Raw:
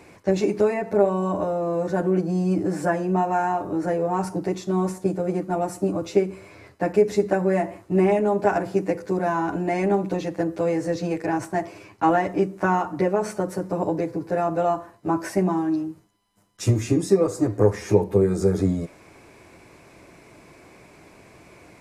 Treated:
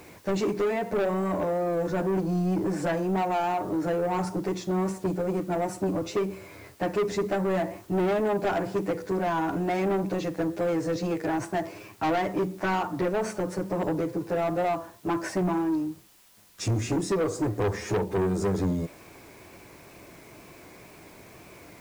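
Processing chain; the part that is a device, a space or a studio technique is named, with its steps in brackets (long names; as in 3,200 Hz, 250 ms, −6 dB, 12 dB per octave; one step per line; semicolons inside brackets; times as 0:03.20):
compact cassette (soft clipping −21.5 dBFS, distortion −8 dB; low-pass filter 8,700 Hz; tape wow and flutter; white noise bed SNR 30 dB)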